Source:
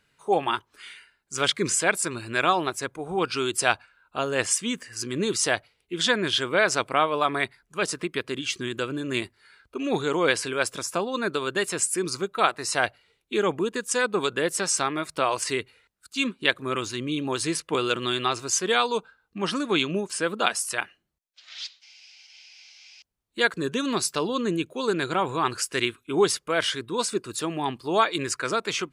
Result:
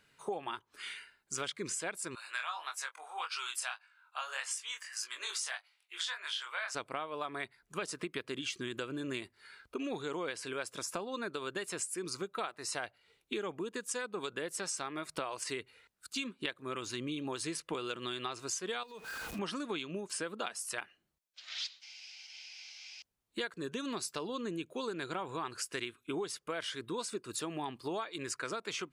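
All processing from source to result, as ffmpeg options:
-filter_complex "[0:a]asettb=1/sr,asplit=3[a][b][c];[a]atrim=end=2.154[d];[b]atrim=start=2.15:end=6.75,asetpts=PTS-STARTPTS,afade=t=in:d=0.004:c=qsin,afade=t=out:st=4.596:d=0.004:c=qsin,highpass=f=870:w=0.5412,highpass=f=870:w=1.3066,asplit=2[e][f];[f]adelay=20,volume=-13dB[g];[e][g]amix=inputs=2:normalize=0,atrim=end_sample=202860,flanger=delay=19:depth=6.7:speed=1.7[h];[c]atrim=start=6.746[i];[d][h]acrossfade=d=0.004:c1=hsin:c2=qsin[j];[j][i]acrossfade=d=0.004:c1=qsin:c2=hsin,asettb=1/sr,asplit=3[k][l][m];[k]atrim=end=18.834[n];[l]atrim=start=18.83:end=19.39,asetpts=PTS-STARTPTS,afade=t=in:d=0.004:c=qsin,afade=t=out:st=0.556:d=0.004:c=qsin,aeval=exprs='val(0)+0.5*0.0158*sgn(val(0))':c=same,acompressor=threshold=-37dB:ratio=4:attack=3.2:release=140:knee=1:detection=peak,aeval=exprs='val(0)+0.00224*sin(2*PI*2500*n/s)':c=same[o];[m]atrim=start=19.386[p];[n][o]acrossfade=d=0.004:c1=hsin:c2=qsin[q];[q][p]acrossfade=d=0.004:c1=qsin:c2=hsin,lowshelf=f=110:g=-6,acompressor=threshold=-35dB:ratio=10"

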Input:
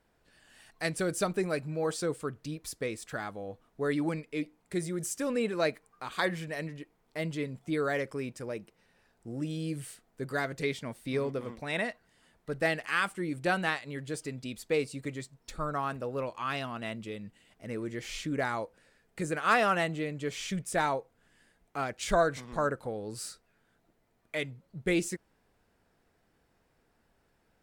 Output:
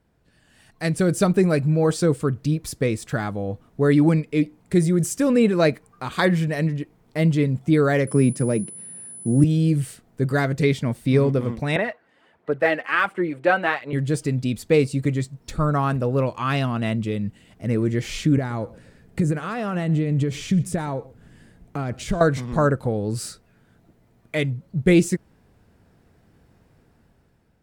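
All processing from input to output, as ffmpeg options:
-filter_complex "[0:a]asettb=1/sr,asplit=3[a][b][c];[a]atrim=end=8.074[d];[b]atrim=start=8.07:end=9.44,asetpts=PTS-STARTPTS,afade=t=in:d=0.004:c=qsin,afade=t=out:st=1.366:d=0.004:c=qsin,highpass=f=140:w=0.5412,highpass=f=140:w=1.3066,lowshelf=f=270:g=10,aeval=exprs='val(0)+0.00708*sin(2*PI*10000*n/s)':c=same[e];[c]atrim=start=9.436[f];[d][e]acrossfade=d=0.004:c1=hsin:c2=qsin[g];[g][f]acrossfade=d=0.004:c1=qsin:c2=hsin,asettb=1/sr,asplit=3[h][i][j];[h]atrim=end=11.764[k];[i]atrim=start=11.76:end=13.93,asetpts=PTS-STARTPTS,afade=t=in:d=0.004:c=qsin,afade=t=out:st=2.166:d=0.004:c=qsin,highpass=77,acrossover=split=340 3100:gain=0.112 1 0.126[l][m][n];[l][m][n]amix=inputs=3:normalize=0,aphaser=in_gain=1:out_gain=1:delay=3.9:decay=0.42:speed=1.4:type=sinusoidal[o];[j]atrim=start=13.926[p];[k][o]acrossfade=d=0.004:c1=hsin:c2=qsin[q];[q][p]acrossfade=d=0.004:c1=qsin:c2=hsin,asettb=1/sr,asplit=3[r][s][t];[r]atrim=end=18.374[u];[s]atrim=start=18.37:end=22.21,asetpts=PTS-STARTPTS,afade=t=in:d=0.004:c=qsin,afade=t=out:st=3.836:d=0.004:c=qsin,acompressor=threshold=-39dB:ratio=4:attack=3.2:release=140:knee=1:detection=peak,lowshelf=f=470:g=6.5,aecho=1:1:123:0.0841,atrim=end_sample=169344[v];[t]atrim=start=22.206[w];[u][v]acrossfade=d=0.004:c1=hsin:c2=qsin[x];[x][w]acrossfade=d=0.004:c1=qsin:c2=hsin,equalizer=f=110:w=0.41:g=12.5,dynaudnorm=f=260:g=7:m=8.5dB,volume=-1dB"

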